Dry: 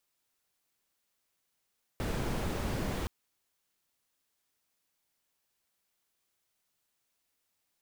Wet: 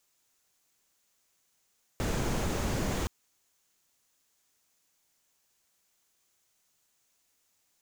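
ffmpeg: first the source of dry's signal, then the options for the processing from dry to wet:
-f lavfi -i "anoisesrc=c=brown:a=0.105:d=1.07:r=44100:seed=1"
-filter_complex "[0:a]equalizer=f=6700:t=o:w=0.5:g=7,asplit=2[s0][s1];[s1]alimiter=level_in=2.37:limit=0.0631:level=0:latency=1,volume=0.422,volume=0.794[s2];[s0][s2]amix=inputs=2:normalize=0"

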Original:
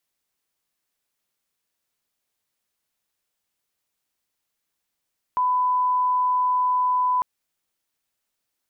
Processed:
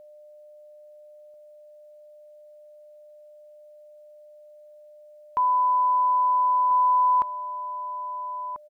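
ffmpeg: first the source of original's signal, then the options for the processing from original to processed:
-f lavfi -i "sine=f=1000:d=1.85:r=44100,volume=0.06dB"
-filter_complex "[0:a]aeval=exprs='val(0)+0.00501*sin(2*PI*600*n/s)':c=same,asplit=2[s0][s1];[s1]adelay=1341,volume=0.355,highshelf=f=4000:g=-30.2[s2];[s0][s2]amix=inputs=2:normalize=0"

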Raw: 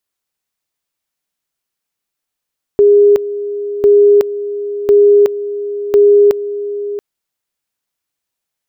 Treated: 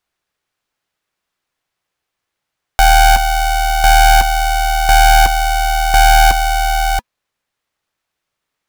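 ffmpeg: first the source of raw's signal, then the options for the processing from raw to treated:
-f lavfi -i "aevalsrc='pow(10,(-4-13.5*gte(mod(t,1.05),0.37))/20)*sin(2*PI*409*t)':d=4.2:s=44100"
-filter_complex "[0:a]bandreject=f=600:w=12,asplit=2[s0][s1];[s1]highpass=f=720:p=1,volume=8.91,asoftclip=type=tanh:threshold=0.668[s2];[s0][s2]amix=inputs=2:normalize=0,lowpass=f=1200:p=1,volume=0.501,aeval=exprs='val(0)*sgn(sin(2*PI*370*n/s))':c=same"

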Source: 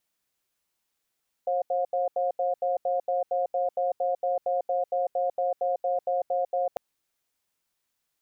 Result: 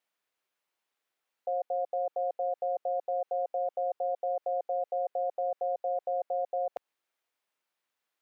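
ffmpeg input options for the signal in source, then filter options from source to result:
-f lavfi -i "aevalsrc='0.0501*(sin(2*PI*537*t)+sin(2*PI*714*t))*clip(min(mod(t,0.23),0.15-mod(t,0.23))/0.005,0,1)':d=5.3:s=44100"
-af "alimiter=limit=0.0668:level=0:latency=1:release=124,highpass=60,bass=f=250:g=-15,treble=f=4000:g=-10"

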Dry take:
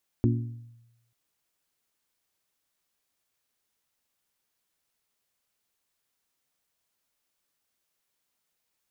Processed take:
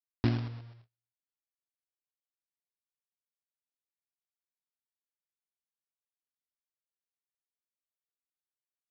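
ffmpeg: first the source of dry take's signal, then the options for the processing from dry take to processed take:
-f lavfi -i "aevalsrc='0.106*pow(10,-3*t/0.97)*sin(2*PI*117*t)+0.0794*pow(10,-3*t/0.597)*sin(2*PI*234*t)+0.0596*pow(10,-3*t/0.526)*sin(2*PI*280.8*t)+0.0447*pow(10,-3*t/0.45)*sin(2*PI*351*t)':d=0.89:s=44100"
-af "agate=range=0.0355:threshold=0.00141:ratio=16:detection=peak,alimiter=limit=0.158:level=0:latency=1:release=497,aresample=11025,acrusher=bits=2:mode=log:mix=0:aa=0.000001,aresample=44100"

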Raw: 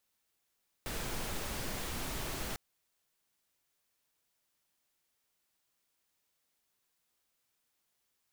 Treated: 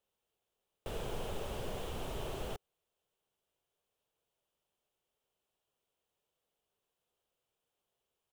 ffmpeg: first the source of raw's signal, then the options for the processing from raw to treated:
-f lavfi -i "anoisesrc=c=pink:a=0.0646:d=1.7:r=44100:seed=1"
-af "firequalizer=gain_entry='entry(120,0);entry(290,-5);entry(410,6);entry(980,-2);entry(2000,-11);entry(3000,-1);entry(4400,-12);entry(7800,-10);entry(15000,-12)':delay=0.05:min_phase=1"

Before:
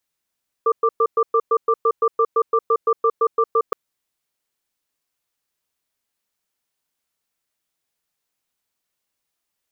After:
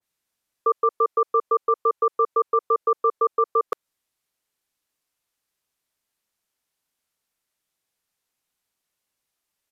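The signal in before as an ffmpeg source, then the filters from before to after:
-f lavfi -i "aevalsrc='0.158*(sin(2*PI*454*t)+sin(2*PI*1180*t))*clip(min(mod(t,0.17),0.06-mod(t,0.17))/0.005,0,1)':d=3.07:s=44100"
-filter_complex "[0:a]acrossover=split=430[s0][s1];[s0]acompressor=threshold=0.0178:ratio=6[s2];[s2][s1]amix=inputs=2:normalize=0,aresample=32000,aresample=44100,adynamicequalizer=threshold=0.0316:dfrequency=1600:dqfactor=0.7:tfrequency=1600:tqfactor=0.7:attack=5:release=100:ratio=0.375:range=1.5:mode=cutabove:tftype=highshelf"

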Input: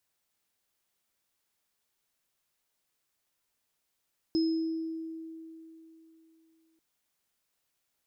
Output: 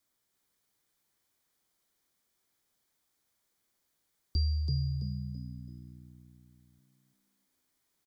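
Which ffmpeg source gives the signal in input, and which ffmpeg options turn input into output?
-f lavfi -i "aevalsrc='0.0708*pow(10,-3*t/3.22)*sin(2*PI*324*t)+0.0188*pow(10,-3*t/0.94)*sin(2*PI*5130*t)':d=2.44:s=44100"
-filter_complex "[0:a]bandreject=f=3100:w=7.4,afreqshift=-400,asplit=2[s0][s1];[s1]asplit=4[s2][s3][s4][s5];[s2]adelay=331,afreqshift=61,volume=0.631[s6];[s3]adelay=662,afreqshift=122,volume=0.188[s7];[s4]adelay=993,afreqshift=183,volume=0.0569[s8];[s5]adelay=1324,afreqshift=244,volume=0.017[s9];[s6][s7][s8][s9]amix=inputs=4:normalize=0[s10];[s0][s10]amix=inputs=2:normalize=0"

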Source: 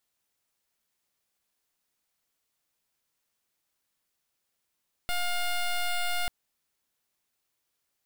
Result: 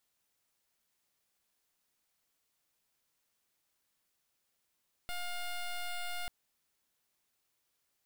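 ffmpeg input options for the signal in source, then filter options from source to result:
-f lavfi -i "aevalsrc='0.0398*(2*lt(mod(709*t,1),0.11)-1)':d=1.19:s=44100"
-af "alimiter=level_in=4.73:limit=0.0631:level=0:latency=1:release=15,volume=0.211"

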